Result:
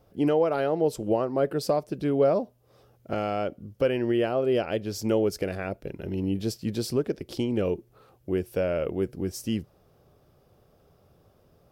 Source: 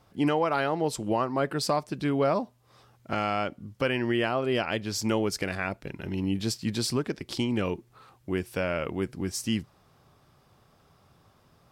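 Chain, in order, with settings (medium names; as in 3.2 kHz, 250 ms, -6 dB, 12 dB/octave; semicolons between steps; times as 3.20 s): ten-band graphic EQ 125 Hz -4 dB, 250 Hz -4 dB, 500 Hz +5 dB, 1 kHz -10 dB, 2 kHz -8 dB, 4 kHz -7 dB, 8 kHz -9 dB; trim +4 dB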